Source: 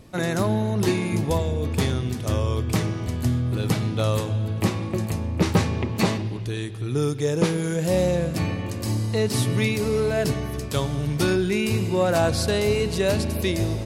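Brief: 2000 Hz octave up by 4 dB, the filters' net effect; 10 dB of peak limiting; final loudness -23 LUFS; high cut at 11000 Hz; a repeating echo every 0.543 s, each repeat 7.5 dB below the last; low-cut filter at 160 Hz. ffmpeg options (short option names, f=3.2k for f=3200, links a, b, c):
-af "highpass=160,lowpass=11k,equalizer=f=2k:t=o:g=5,alimiter=limit=-17.5dB:level=0:latency=1,aecho=1:1:543|1086|1629|2172|2715:0.422|0.177|0.0744|0.0312|0.0131,volume=4dB"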